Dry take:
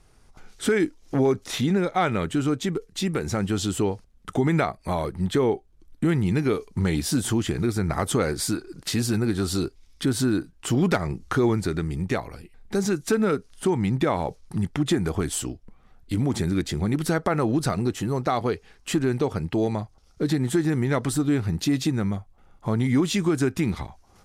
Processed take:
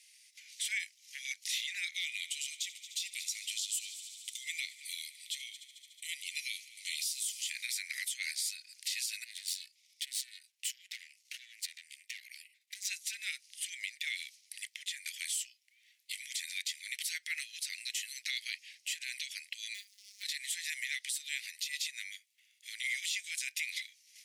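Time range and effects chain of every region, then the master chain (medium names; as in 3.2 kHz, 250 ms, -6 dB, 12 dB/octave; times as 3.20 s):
1.94–7.50 s: static phaser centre 670 Hz, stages 4 + multi-head delay 73 ms, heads first and third, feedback 75%, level -21 dB
9.24–12.87 s: compression, threshold -30 dBFS + valve stage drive 33 dB, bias 0.8
19.74–20.23 s: companding laws mixed up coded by mu + robot voice 203 Hz
whole clip: steep high-pass 2 kHz 72 dB/octave; compression 5:1, threshold -37 dBFS; peak limiter -31.5 dBFS; trim +7 dB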